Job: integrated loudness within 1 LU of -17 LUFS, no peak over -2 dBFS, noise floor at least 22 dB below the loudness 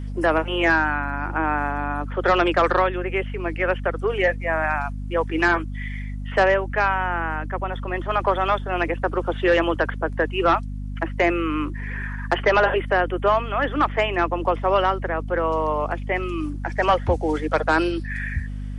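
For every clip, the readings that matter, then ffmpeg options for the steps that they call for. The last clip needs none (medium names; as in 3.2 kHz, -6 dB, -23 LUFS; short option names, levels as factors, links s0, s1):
hum 50 Hz; highest harmonic 250 Hz; hum level -27 dBFS; loudness -22.5 LUFS; peak level -8.5 dBFS; loudness target -17.0 LUFS
-> -af "bandreject=f=50:t=h:w=6,bandreject=f=100:t=h:w=6,bandreject=f=150:t=h:w=6,bandreject=f=200:t=h:w=6,bandreject=f=250:t=h:w=6"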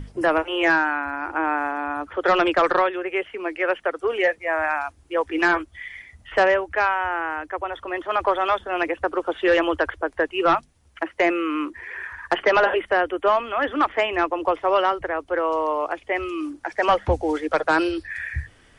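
hum not found; loudness -22.5 LUFS; peak level -9.5 dBFS; loudness target -17.0 LUFS
-> -af "volume=1.88"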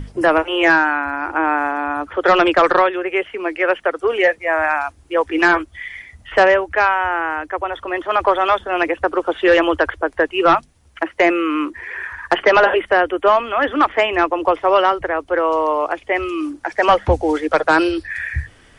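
loudness -17.0 LUFS; peak level -4.0 dBFS; noise floor -49 dBFS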